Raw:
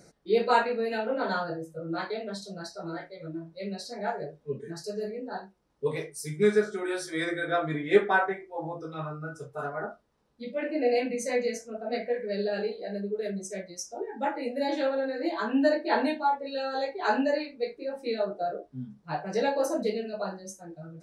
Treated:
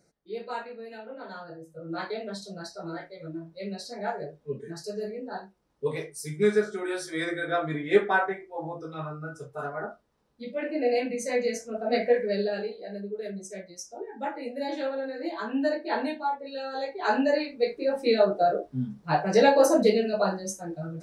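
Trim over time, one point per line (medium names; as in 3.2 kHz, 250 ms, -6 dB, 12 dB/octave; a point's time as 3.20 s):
1.34 s -12 dB
2.04 s 0 dB
11.27 s 0 dB
12.13 s +7.5 dB
12.69 s -3 dB
16.68 s -3 dB
17.90 s +8 dB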